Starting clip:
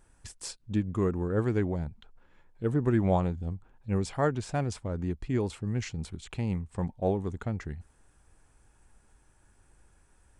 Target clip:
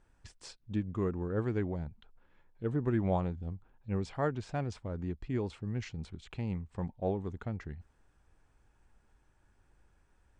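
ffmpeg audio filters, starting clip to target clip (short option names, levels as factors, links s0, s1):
-af "lowpass=5000,volume=0.562"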